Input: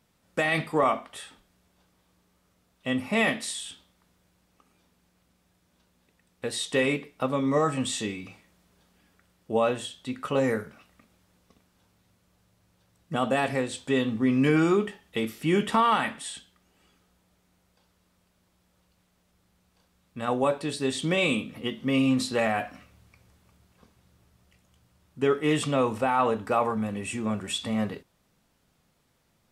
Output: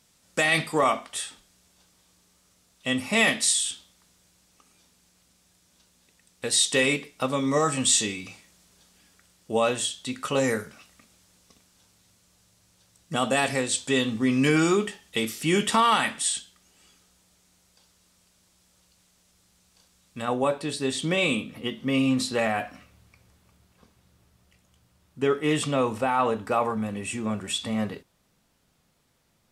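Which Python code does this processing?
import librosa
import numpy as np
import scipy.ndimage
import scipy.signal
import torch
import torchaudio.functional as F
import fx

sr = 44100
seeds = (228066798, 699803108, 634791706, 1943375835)

y = fx.peak_eq(x, sr, hz=7100.0, db=fx.steps((0.0, 13.5), (20.22, 3.0)), octaves=2.2)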